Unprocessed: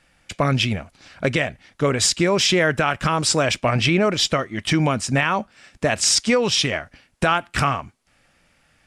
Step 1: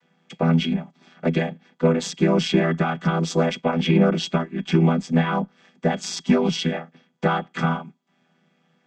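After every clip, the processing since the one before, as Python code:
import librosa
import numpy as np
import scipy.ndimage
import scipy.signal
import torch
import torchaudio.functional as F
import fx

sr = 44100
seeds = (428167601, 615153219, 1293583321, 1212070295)

y = fx.chord_vocoder(x, sr, chord='minor triad', root=52)
y = fx.cheby_harmonics(y, sr, harmonics=(6,), levels_db=(-36,), full_scale_db=-5.5)
y = fx.small_body(y, sr, hz=(880.0, 3300.0), ring_ms=100, db=16)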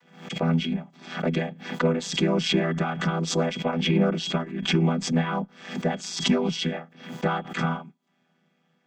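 y = fx.pre_swell(x, sr, db_per_s=100.0)
y = F.gain(torch.from_numpy(y), -4.5).numpy()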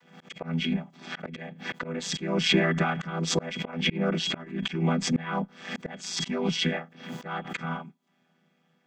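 y = fx.dynamic_eq(x, sr, hz=2000.0, q=1.5, threshold_db=-43.0, ratio=4.0, max_db=6)
y = fx.auto_swell(y, sr, attack_ms=251.0)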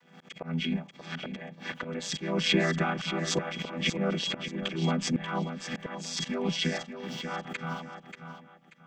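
y = fx.echo_feedback(x, sr, ms=585, feedback_pct=28, wet_db=-9)
y = F.gain(torch.from_numpy(y), -2.5).numpy()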